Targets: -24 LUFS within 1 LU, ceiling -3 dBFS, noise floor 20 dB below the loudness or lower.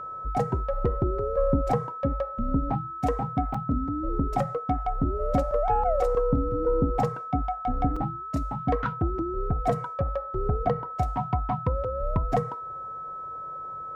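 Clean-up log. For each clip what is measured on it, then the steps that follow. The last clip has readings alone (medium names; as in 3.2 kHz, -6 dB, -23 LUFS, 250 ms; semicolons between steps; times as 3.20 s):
dropouts 2; longest dropout 4.4 ms; steady tone 1.3 kHz; tone level -34 dBFS; loudness -28.0 LUFS; peak level -12.5 dBFS; loudness target -24.0 LUFS
-> interpolate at 3.54/7.96 s, 4.4 ms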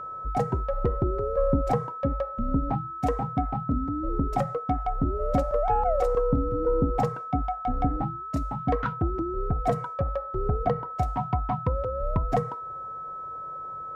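dropouts 0; steady tone 1.3 kHz; tone level -34 dBFS
-> band-stop 1.3 kHz, Q 30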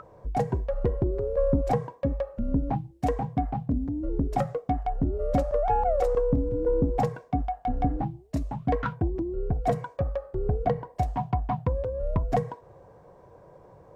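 steady tone not found; loudness -28.5 LUFS; peak level -13.0 dBFS; loudness target -24.0 LUFS
-> trim +4.5 dB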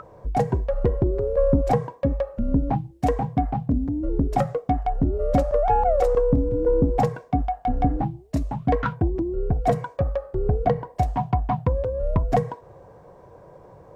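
loudness -24.0 LUFS; peak level -8.5 dBFS; noise floor -49 dBFS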